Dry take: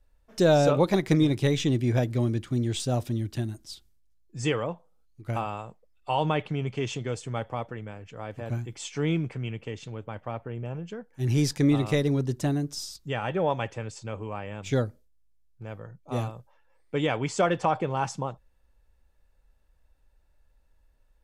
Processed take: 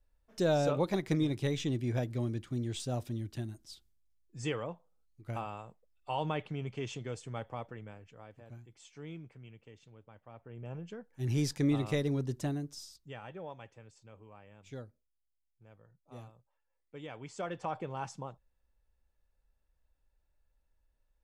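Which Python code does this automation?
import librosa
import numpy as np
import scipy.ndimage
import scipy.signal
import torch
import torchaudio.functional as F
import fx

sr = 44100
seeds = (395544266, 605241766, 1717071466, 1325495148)

y = fx.gain(x, sr, db=fx.line((7.93, -8.5), (8.47, -19.0), (10.28, -19.0), (10.73, -7.0), (12.39, -7.0), (13.53, -19.5), (17.01, -19.5), (17.79, -11.0)))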